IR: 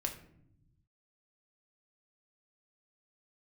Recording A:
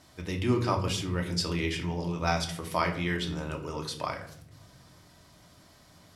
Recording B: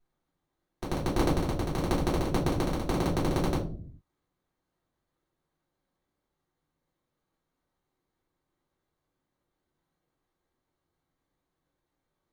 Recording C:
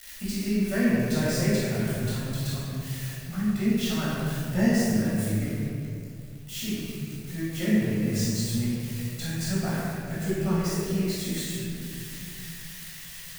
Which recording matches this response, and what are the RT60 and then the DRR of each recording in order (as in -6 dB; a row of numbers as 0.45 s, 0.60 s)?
A; 0.70 s, 0.50 s, 2.5 s; 1.5 dB, -7.5 dB, -9.5 dB